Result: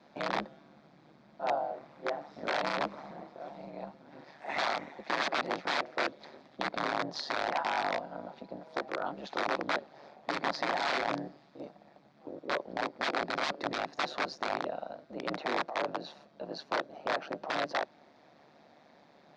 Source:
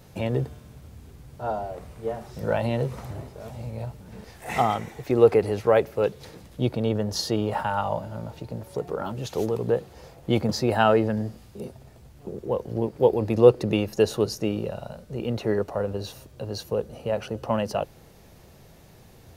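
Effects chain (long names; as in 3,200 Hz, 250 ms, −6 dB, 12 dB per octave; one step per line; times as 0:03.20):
wrap-around overflow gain 19.5 dB
ring modulation 73 Hz
loudspeaker in its box 330–4,200 Hz, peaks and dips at 440 Hz −7 dB, 700 Hz +4 dB, 2,900 Hz −9 dB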